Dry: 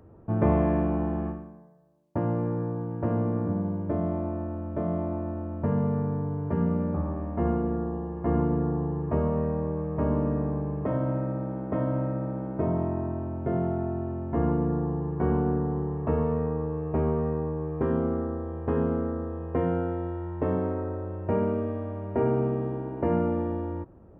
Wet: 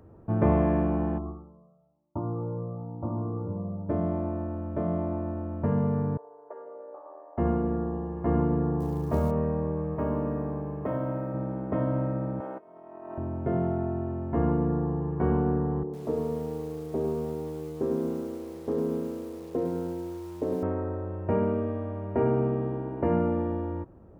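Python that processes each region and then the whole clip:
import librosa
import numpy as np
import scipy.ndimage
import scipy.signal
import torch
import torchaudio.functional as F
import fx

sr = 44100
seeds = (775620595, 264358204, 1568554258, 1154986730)

y = fx.chain(x, sr, fx.brickwall_lowpass(high_hz=1400.0),
    fx.echo_thinned(ms=165, feedback_pct=66, hz=1100.0, wet_db=-20),
    fx.comb_cascade(direction='rising', hz=1.0), at=(1.18, 3.89))
y = fx.chain(y, sr, fx.envelope_sharpen(power=1.5),
    fx.cheby2_highpass(hz=210.0, order=4, stop_db=50), at=(6.17, 7.38))
y = fx.chain(y, sr, fx.hum_notches(base_hz=50, count=3),
    fx.quant_float(bits=4),
    fx.doubler(ms=27.0, db=-11.0), at=(8.8, 9.31))
y = fx.chain(y, sr, fx.low_shelf(hz=270.0, db=-6.0),
    fx.resample_linear(factor=3), at=(9.95, 11.34))
y = fx.chain(y, sr, fx.highpass(hz=520.0, slope=12),
    fx.over_compress(threshold_db=-41.0, ratio=-0.5), at=(12.4, 13.18))
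y = fx.chain(y, sr, fx.bandpass_q(hz=380.0, q=1.3),
    fx.echo_crushed(ms=104, feedback_pct=55, bits=8, wet_db=-8.0), at=(15.83, 20.63))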